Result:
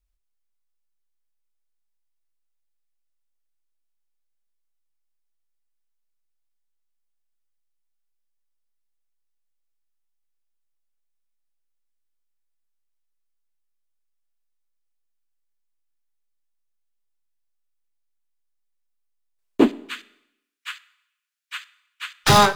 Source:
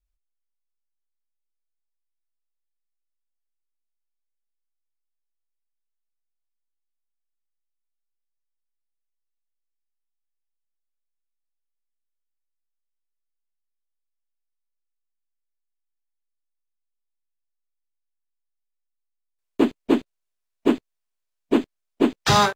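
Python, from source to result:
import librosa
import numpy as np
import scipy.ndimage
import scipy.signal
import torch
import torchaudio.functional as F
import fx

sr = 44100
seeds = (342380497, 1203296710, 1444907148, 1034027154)

y = fx.tracing_dist(x, sr, depth_ms=0.048)
y = fx.steep_highpass(y, sr, hz=1300.0, slope=48, at=(19.68, 22.24))
y = fx.rev_schroeder(y, sr, rt60_s=0.83, comb_ms=28, drr_db=18.5)
y = y * librosa.db_to_amplitude(3.0)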